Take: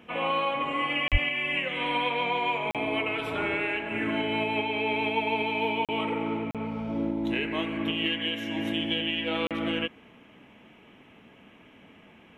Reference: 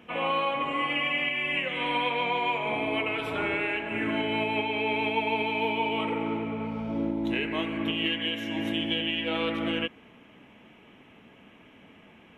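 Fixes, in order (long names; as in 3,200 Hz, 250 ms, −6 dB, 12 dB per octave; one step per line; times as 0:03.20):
0:01.11–0:01.23: high-pass filter 140 Hz 24 dB per octave
repair the gap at 0:01.08/0:02.71/0:05.85/0:06.51/0:09.47, 37 ms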